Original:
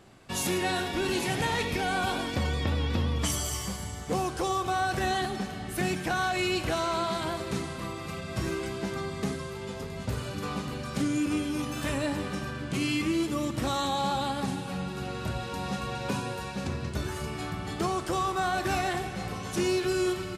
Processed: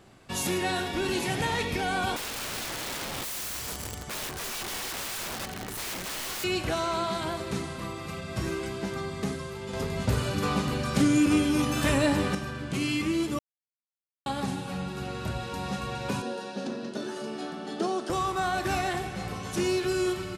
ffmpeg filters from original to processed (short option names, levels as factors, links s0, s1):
-filter_complex "[0:a]asettb=1/sr,asplit=3[s0][s1][s2];[s0]atrim=end=2.164[s3];[s1]atrim=start=2.16:end=6.44,asetpts=PTS-STARTPTS,afade=t=in:d=0.004:c=qsin,afade=t=out:st=4.276:d=0.004:c=qsin,aeval=exprs='(mod(31.6*val(0)+1,2)-1)/31.6':c=same[s4];[s2]atrim=start=6.436[s5];[s3][s4]acrossfade=d=0.004:c1=hsin:c2=qsin[s6];[s6][s5]acrossfade=d=0.004:c1=qsin:c2=hsin,asettb=1/sr,asplit=3[s7][s8][s9];[s7]atrim=end=9.734[s10];[s8]atrim=start=9.73:end=12.35,asetpts=PTS-STARTPTS,afade=t=in:d=0.004:c=qsin,afade=t=out:st=2.616:d=0.004:c=qsin,acontrast=54[s11];[s9]atrim=start=12.346[s12];[s10][s11]acrossfade=d=0.004:c1=hsin:c2=qsin[s13];[s13][s12]acrossfade=d=0.004:c1=qsin:c2=hsin,asettb=1/sr,asplit=3[s14][s15][s16];[s14]atrim=end=16.224[s17];[s15]atrim=start=16.22:end=18.1,asetpts=PTS-STARTPTS,afade=t=in:d=0.004:c=qsin,afade=t=out:st=1.876:d=0.004:c=qsin,highpass=f=220:w=0.5412,highpass=f=220:w=1.3066,equalizer=f=230:t=q:w=4:g=8,equalizer=f=420:t=q:w=4:g=3,equalizer=f=590:t=q:w=4:g=4,equalizer=f=1100:t=q:w=4:g=-6,equalizer=f=2200:t=q:w=4:g=-10,equalizer=f=7600:t=q:w=4:g=-8,lowpass=f=9300:w=0.5412,lowpass=f=9300:w=1.3066[s18];[s16]atrim=start=18.096[s19];[s17][s18]acrossfade=d=0.004:c1=hsin:c2=qsin[s20];[s20][s19]acrossfade=d=0.004:c1=qsin:c2=hsin,asplit=3[s21][s22][s23];[s21]atrim=end=13.39,asetpts=PTS-STARTPTS,afade=t=out:st=13.386:d=0.004:c=hsin[s24];[s22]atrim=start=13.39:end=14.26,asetpts=PTS-STARTPTS,volume=0[s25];[s23]atrim=start=14.26,asetpts=PTS-STARTPTS,afade=t=in:d=0.004:c=hsin[s26];[s24][s25][s26]concat=n=3:v=0:a=1"